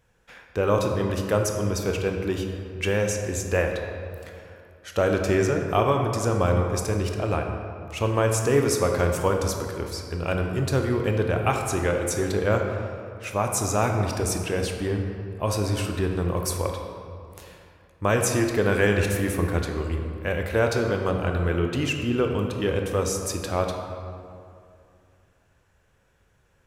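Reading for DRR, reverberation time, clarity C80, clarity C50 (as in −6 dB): 3.0 dB, 2.5 s, 5.5 dB, 4.0 dB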